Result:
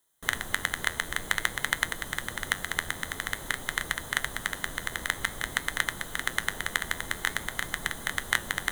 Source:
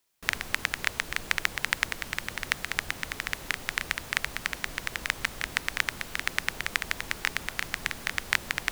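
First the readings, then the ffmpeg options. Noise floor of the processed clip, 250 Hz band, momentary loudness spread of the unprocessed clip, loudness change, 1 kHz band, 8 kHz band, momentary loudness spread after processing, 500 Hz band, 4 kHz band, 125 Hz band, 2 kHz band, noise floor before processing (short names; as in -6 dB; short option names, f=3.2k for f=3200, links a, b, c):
-42 dBFS, +1.5 dB, 4 LU, 0.0 dB, +1.5 dB, +2.5 dB, 4 LU, +1.5 dB, -0.5 dB, +1.5 dB, 0.0 dB, -44 dBFS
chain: -af "superequalizer=12b=0.251:14b=0.316:16b=1.58,areverse,acompressor=mode=upward:threshold=-41dB:ratio=2.5,areverse,flanger=delay=6:depth=6.2:regen=-78:speed=0.5:shape=sinusoidal,volume=6dB"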